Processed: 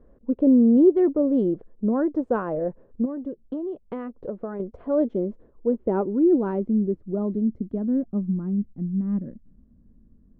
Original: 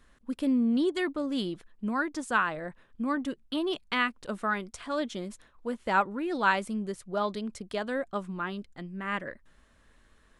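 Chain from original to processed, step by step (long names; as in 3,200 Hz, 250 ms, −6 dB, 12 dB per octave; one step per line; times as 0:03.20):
low-pass filter sweep 500 Hz → 220 Hz, 0:04.80–0:08.62
0:03.05–0:04.60: downward compressor 10 to 1, threshold −35 dBFS, peak gain reduction 13 dB
level +7 dB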